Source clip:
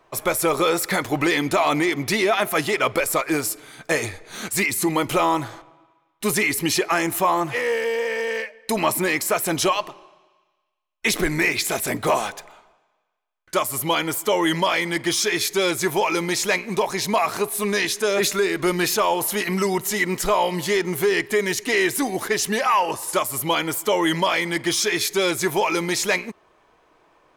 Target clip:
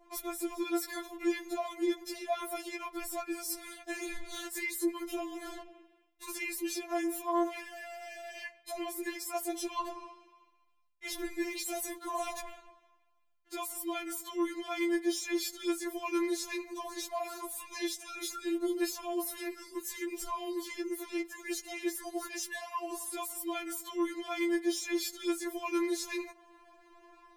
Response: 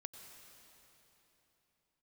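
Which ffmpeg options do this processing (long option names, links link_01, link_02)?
-filter_complex "[0:a]asplit=2[link_01][link_02];[link_02]asoftclip=type=tanh:threshold=-25dB,volume=-11.5dB[link_03];[link_01][link_03]amix=inputs=2:normalize=0,adynamicequalizer=threshold=0.0158:dfrequency=2200:dqfactor=0.82:tfrequency=2200:tqfactor=0.82:attack=5:release=100:ratio=0.375:range=2.5:mode=cutabove:tftype=bell,alimiter=limit=-13.5dB:level=0:latency=1:release=217,equalizer=frequency=62:width=1.1:gain=9,areverse,acompressor=threshold=-31dB:ratio=10,areverse,afftfilt=real='re*4*eq(mod(b,16),0)':imag='im*4*eq(mod(b,16),0)':win_size=2048:overlap=0.75,volume=-1.5dB"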